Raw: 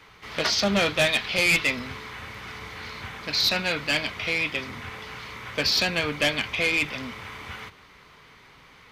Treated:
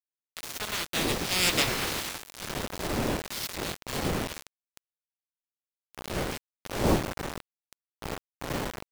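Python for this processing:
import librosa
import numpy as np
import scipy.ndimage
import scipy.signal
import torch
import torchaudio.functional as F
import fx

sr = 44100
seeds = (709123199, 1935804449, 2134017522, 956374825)

y = fx.spec_clip(x, sr, under_db=20)
y = fx.doppler_pass(y, sr, speed_mps=15, closest_m=2.8, pass_at_s=1.94)
y = fx.dmg_wind(y, sr, seeds[0], corner_hz=480.0, level_db=-40.0)
y = fx.quant_dither(y, sr, seeds[1], bits=6, dither='none')
y = y * librosa.db_to_amplitude(5.0)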